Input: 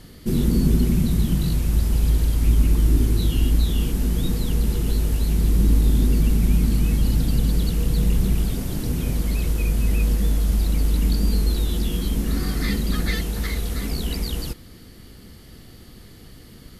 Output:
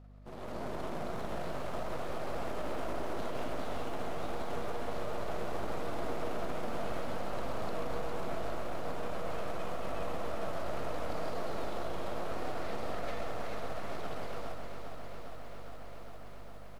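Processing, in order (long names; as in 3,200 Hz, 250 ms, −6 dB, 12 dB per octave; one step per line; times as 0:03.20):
spectral envelope flattened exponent 0.6
resonant band-pass 640 Hz, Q 4.9
half-wave rectification
on a send: single-tap delay 134 ms −7 dB
on the sum: brickwall limiter −31.5 dBFS, peak gain reduction 7 dB
automatic gain control gain up to 8.5 dB
mains hum 50 Hz, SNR 15 dB
feedback echo at a low word length 406 ms, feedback 80%, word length 10 bits, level −8 dB
level −4 dB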